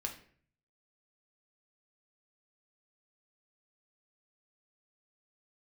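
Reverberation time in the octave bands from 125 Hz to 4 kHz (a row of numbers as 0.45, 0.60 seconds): 0.85, 0.65, 0.55, 0.45, 0.50, 0.40 seconds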